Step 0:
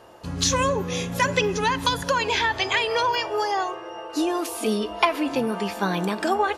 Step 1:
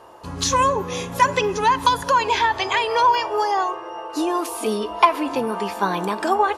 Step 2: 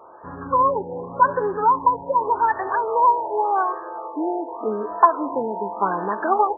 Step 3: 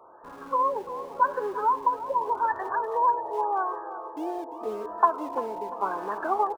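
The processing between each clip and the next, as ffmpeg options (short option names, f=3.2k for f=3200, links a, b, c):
-af "equalizer=f=160:t=o:w=0.67:g=-3,equalizer=f=400:t=o:w=0.67:g=3,equalizer=f=1k:t=o:w=0.67:g=9,equalizer=f=10k:t=o:w=0.67:g=3,volume=-1dB"
-af "aemphasis=mode=production:type=bsi,afftfilt=real='re*lt(b*sr/1024,950*pow(1900/950,0.5+0.5*sin(2*PI*0.86*pts/sr)))':imag='im*lt(b*sr/1024,950*pow(1900/950,0.5+0.5*sin(2*PI*0.86*pts/sr)))':win_size=1024:overlap=0.75,volume=1dB"
-filter_complex "[0:a]acrossover=split=230|400[a][b][c];[a]aeval=exprs='(mod(168*val(0)+1,2)-1)/168':c=same[d];[d][b][c]amix=inputs=3:normalize=0,aecho=1:1:345|690|1035:0.211|0.0719|0.0244,volume=-6.5dB"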